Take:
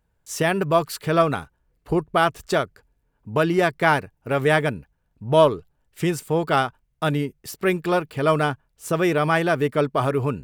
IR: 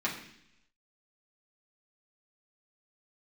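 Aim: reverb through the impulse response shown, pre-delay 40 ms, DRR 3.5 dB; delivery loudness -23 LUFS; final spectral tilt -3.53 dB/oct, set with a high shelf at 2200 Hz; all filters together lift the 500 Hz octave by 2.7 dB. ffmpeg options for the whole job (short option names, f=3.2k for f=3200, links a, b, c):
-filter_complex "[0:a]equalizer=f=500:t=o:g=4,highshelf=f=2.2k:g=-6,asplit=2[a][b];[1:a]atrim=start_sample=2205,adelay=40[c];[b][c]afir=irnorm=-1:irlink=0,volume=-11dB[d];[a][d]amix=inputs=2:normalize=0,volume=-3dB"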